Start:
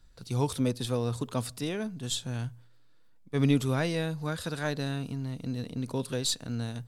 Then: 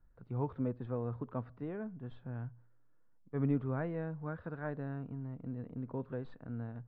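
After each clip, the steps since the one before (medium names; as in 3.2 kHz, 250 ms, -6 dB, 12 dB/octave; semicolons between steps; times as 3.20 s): low-pass 1.6 kHz 24 dB/octave; trim -7.5 dB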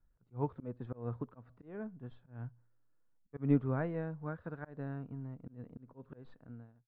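fade out at the end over 0.59 s; slow attack 156 ms; upward expansion 1.5:1, over -51 dBFS; trim +5 dB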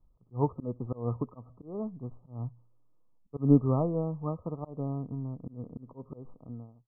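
brick-wall FIR low-pass 1.3 kHz; trim +7.5 dB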